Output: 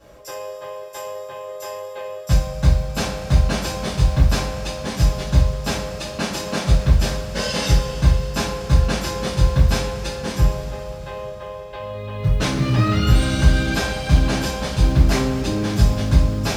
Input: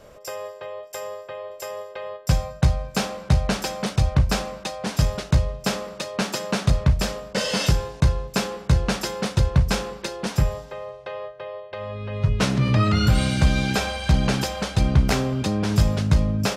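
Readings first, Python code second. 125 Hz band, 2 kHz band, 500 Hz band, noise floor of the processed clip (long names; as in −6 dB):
+2.5 dB, +2.0 dB, +2.0 dB, −34 dBFS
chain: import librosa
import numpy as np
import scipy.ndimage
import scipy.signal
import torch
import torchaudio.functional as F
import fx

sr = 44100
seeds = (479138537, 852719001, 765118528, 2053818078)

y = fx.quant_companded(x, sr, bits=8)
y = fx.rev_double_slope(y, sr, seeds[0], early_s=0.33, late_s=4.1, knee_db=-18, drr_db=-9.5)
y = y * 10.0 ** (-8.5 / 20.0)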